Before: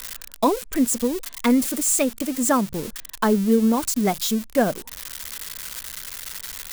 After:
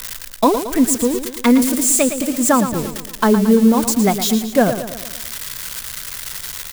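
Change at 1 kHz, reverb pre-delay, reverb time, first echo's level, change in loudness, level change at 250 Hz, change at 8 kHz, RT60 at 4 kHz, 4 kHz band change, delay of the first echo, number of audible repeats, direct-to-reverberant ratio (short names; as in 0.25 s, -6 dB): +5.5 dB, none, none, -10.0 dB, +5.5 dB, +6.0 dB, +5.5 dB, none, +5.5 dB, 0.113 s, 5, none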